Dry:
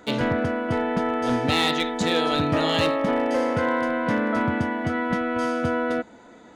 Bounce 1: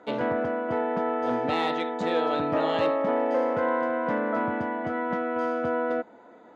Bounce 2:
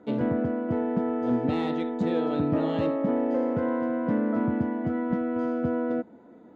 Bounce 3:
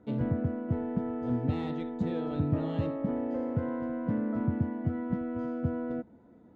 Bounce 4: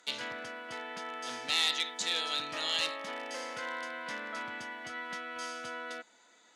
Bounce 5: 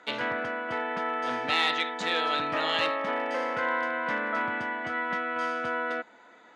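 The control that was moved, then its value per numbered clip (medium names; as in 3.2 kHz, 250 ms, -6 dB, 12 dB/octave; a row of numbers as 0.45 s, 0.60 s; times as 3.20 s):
band-pass filter, frequency: 670 Hz, 260 Hz, 100 Hz, 6.3 kHz, 1.8 kHz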